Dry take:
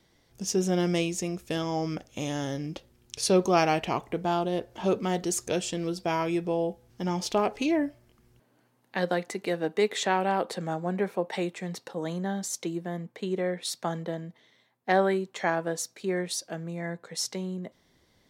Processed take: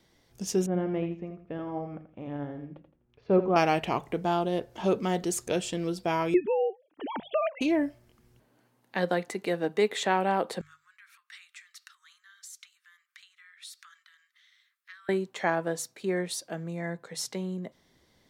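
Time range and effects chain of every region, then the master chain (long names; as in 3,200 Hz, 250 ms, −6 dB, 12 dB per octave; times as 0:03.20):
0:00.66–0:03.56: Bessel low-pass filter 1,400 Hz, order 4 + repeating echo 83 ms, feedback 31%, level −8 dB + expander for the loud parts, over −39 dBFS
0:06.34–0:07.61: three sine waves on the formant tracks + dynamic equaliser 2,000 Hz, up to +5 dB, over −48 dBFS, Q 1.3
0:10.61–0:15.09: downward compressor 2.5 to 1, threshold −45 dBFS + Butterworth high-pass 1,200 Hz 72 dB per octave
whole clip: dynamic equaliser 5,700 Hz, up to −5 dB, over −49 dBFS, Q 1.7; mains-hum notches 50/100/150 Hz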